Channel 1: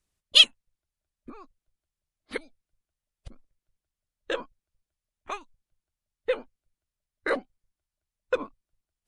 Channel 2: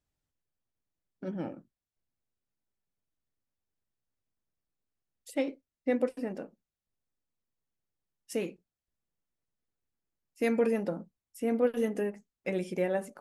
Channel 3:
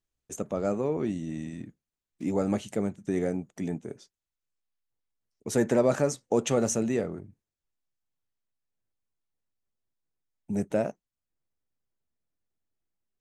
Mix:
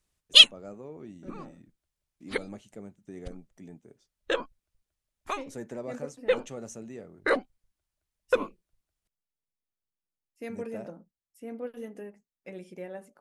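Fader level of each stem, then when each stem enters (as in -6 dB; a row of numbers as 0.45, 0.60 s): +2.0, -10.5, -15.0 dB; 0.00, 0.00, 0.00 s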